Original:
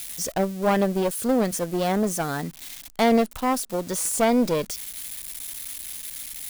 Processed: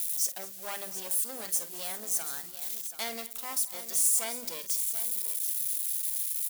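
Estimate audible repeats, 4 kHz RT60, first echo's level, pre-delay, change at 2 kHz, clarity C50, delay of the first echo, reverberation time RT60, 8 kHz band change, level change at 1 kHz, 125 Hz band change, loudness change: 3, no reverb, -13.5 dB, no reverb, -11.0 dB, no reverb, 49 ms, no reverb, +1.5 dB, -17.5 dB, under -25 dB, -4.5 dB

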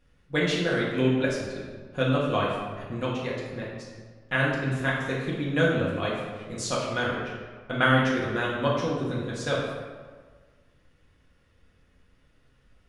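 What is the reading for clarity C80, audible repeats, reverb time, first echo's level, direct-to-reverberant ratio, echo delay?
3.0 dB, no echo, 1.5 s, no echo, -6.0 dB, no echo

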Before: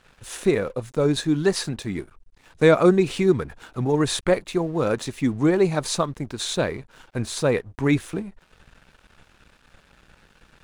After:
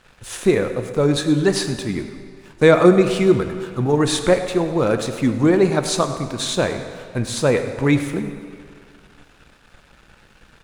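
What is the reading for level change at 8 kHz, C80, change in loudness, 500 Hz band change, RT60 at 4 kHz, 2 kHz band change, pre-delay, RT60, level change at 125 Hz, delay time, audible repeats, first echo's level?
+4.0 dB, 9.0 dB, +4.0 dB, +4.0 dB, 1.7 s, +4.5 dB, 4 ms, 2.2 s, +4.0 dB, 101 ms, 1, -16.0 dB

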